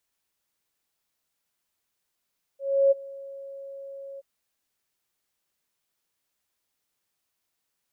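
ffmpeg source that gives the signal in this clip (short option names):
-f lavfi -i "aevalsrc='0.188*sin(2*PI*550*t)':d=1.626:s=44100,afade=t=in:d=0.322,afade=t=out:st=0.322:d=0.021:silence=0.075,afade=t=out:st=1.6:d=0.026"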